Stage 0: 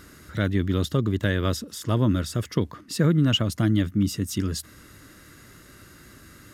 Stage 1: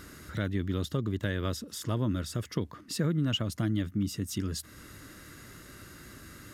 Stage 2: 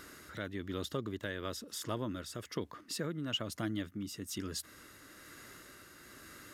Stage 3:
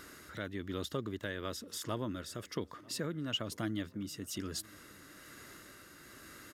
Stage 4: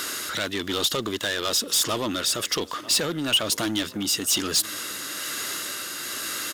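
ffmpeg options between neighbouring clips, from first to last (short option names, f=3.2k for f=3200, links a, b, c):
-af "acompressor=threshold=-40dB:ratio=1.5"
-af "bass=f=250:g=-11,treble=f=4k:g=-1,tremolo=f=1.1:d=0.33,volume=-1dB"
-filter_complex "[0:a]asplit=2[a][b];[b]adelay=944,lowpass=f=2.4k:p=1,volume=-23.5dB,asplit=2[c][d];[d]adelay=944,lowpass=f=2.4k:p=1,volume=0.54,asplit=2[e][f];[f]adelay=944,lowpass=f=2.4k:p=1,volume=0.54,asplit=2[g][h];[h]adelay=944,lowpass=f=2.4k:p=1,volume=0.54[i];[a][c][e][g][i]amix=inputs=5:normalize=0"
-filter_complex "[0:a]asplit=2[a][b];[b]highpass=f=720:p=1,volume=23dB,asoftclip=type=tanh:threshold=-22dB[c];[a][c]amix=inputs=2:normalize=0,lowpass=f=2.8k:p=1,volume=-6dB,aexciter=amount=3.3:drive=5.7:freq=2.8k,volume=4.5dB"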